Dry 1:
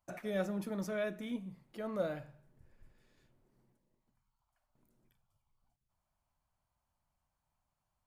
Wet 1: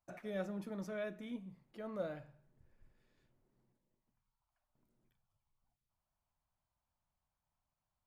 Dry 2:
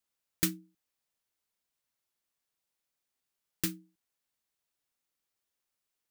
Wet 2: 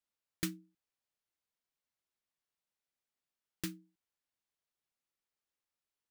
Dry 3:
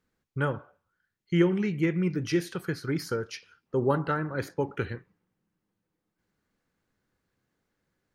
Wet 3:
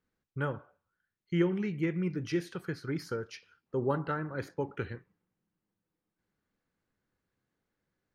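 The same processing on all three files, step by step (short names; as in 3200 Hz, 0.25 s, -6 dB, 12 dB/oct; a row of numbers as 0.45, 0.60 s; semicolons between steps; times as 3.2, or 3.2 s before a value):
high shelf 7000 Hz -8 dB; gain -5 dB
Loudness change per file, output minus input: -5.0, -8.5, -5.0 LU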